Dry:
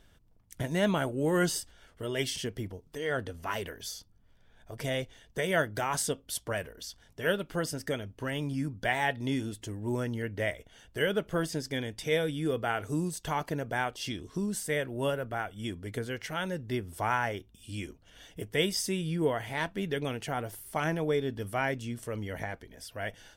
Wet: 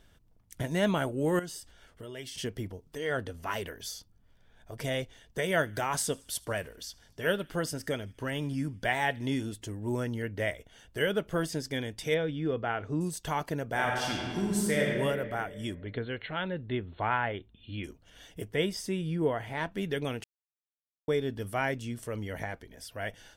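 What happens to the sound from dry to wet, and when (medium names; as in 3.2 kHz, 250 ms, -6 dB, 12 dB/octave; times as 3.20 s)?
1.39–2.38 s: compression 2.5:1, threshold -43 dBFS
5.50–9.43 s: feedback echo behind a high-pass 78 ms, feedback 60%, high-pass 1.9 kHz, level -23.5 dB
12.14–13.01 s: distance through air 220 m
13.67–14.90 s: reverb throw, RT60 2 s, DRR -2 dB
15.75–17.84 s: brick-wall FIR low-pass 4.3 kHz
18.51–19.72 s: treble shelf 3.3 kHz -9.5 dB
20.24–21.08 s: mute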